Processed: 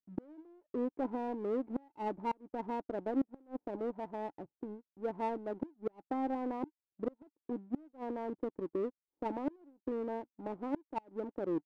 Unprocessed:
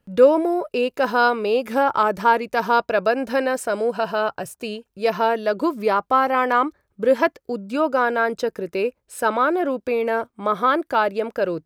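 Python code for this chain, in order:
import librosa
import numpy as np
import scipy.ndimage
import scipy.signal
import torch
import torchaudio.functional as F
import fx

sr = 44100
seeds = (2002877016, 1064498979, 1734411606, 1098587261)

y = fx.leveller(x, sr, passes=1)
y = fx.formant_cascade(y, sr, vowel='u')
y = fx.power_curve(y, sr, exponent=1.4)
y = fx.gate_flip(y, sr, shuts_db=-24.0, range_db=-31)
y = F.gain(torch.from_numpy(y), 1.0).numpy()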